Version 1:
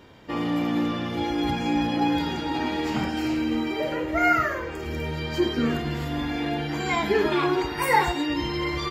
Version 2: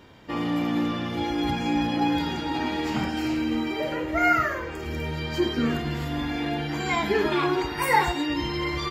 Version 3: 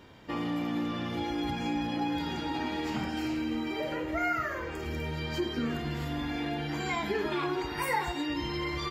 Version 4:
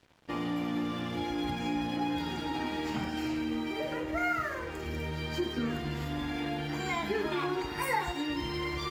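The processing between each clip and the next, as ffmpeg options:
ffmpeg -i in.wav -af "equalizer=frequency=470:width=1.5:gain=-2" out.wav
ffmpeg -i in.wav -af "acompressor=threshold=-29dB:ratio=2,volume=-2.5dB" out.wav
ffmpeg -i in.wav -af "aeval=exprs='sgn(val(0))*max(abs(val(0))-0.00282,0)':channel_layout=same" out.wav

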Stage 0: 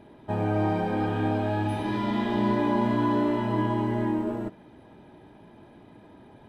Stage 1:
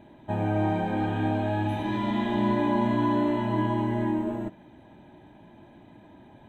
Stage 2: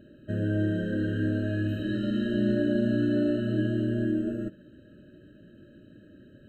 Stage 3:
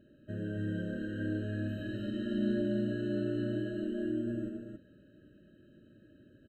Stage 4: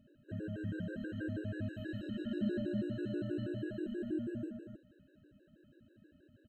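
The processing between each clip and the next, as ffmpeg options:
ffmpeg -i in.wav -af "superequalizer=7b=0.501:10b=0.562:14b=0.251:16b=0.355" out.wav
ffmpeg -i in.wav -af "afftfilt=real='re*eq(mod(floor(b*sr/1024/630),2),0)':imag='im*eq(mod(floor(b*sr/1024/630),2),0)':win_size=1024:overlap=0.75" out.wav
ffmpeg -i in.wav -af "aecho=1:1:90.38|277:0.398|0.631,volume=-9dB" out.wav
ffmpeg -i in.wav -af "afftfilt=real='re*gt(sin(2*PI*6.2*pts/sr)*(1-2*mod(floor(b*sr/1024/290),2)),0)':imag='im*gt(sin(2*PI*6.2*pts/sr)*(1-2*mod(floor(b*sr/1024/290),2)),0)':win_size=1024:overlap=0.75,volume=-1dB" out.wav

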